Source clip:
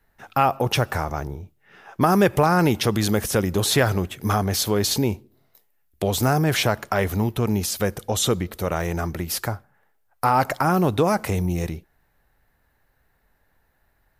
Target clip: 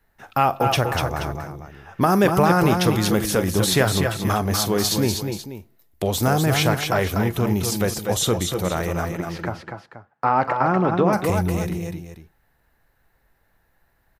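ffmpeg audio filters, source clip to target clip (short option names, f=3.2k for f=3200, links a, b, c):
-filter_complex "[0:a]asettb=1/sr,asplit=3[a][b][c];[a]atrim=end=9.134[d];[b]atrim=start=9.13:end=11.13,asetpts=PTS-STARTPTS,afade=t=in:d=0.004:c=qsin,afade=t=out:st=1.996:d=0.004:c=qsin,highpass=140,lowpass=2.4k[e];[c]atrim=start=11.126[f];[d][e]acrossfade=d=0.004:c1=hsin:c2=qsin[g];[g][f]acrossfade=d=0.004:c1=qsin:c2=hsin,aecho=1:1:43|243|249|479:0.15|0.473|0.299|0.211"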